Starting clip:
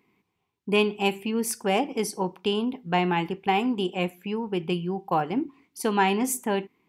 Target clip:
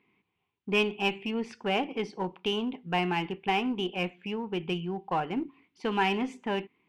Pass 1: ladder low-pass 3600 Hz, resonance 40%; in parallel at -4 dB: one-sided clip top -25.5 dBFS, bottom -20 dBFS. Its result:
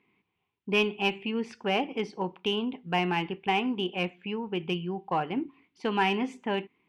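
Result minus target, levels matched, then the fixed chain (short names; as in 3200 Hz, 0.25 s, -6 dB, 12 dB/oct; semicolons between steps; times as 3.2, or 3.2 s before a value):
one-sided clip: distortion -6 dB
ladder low-pass 3600 Hz, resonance 40%; in parallel at -4 dB: one-sided clip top -34.5 dBFS, bottom -20 dBFS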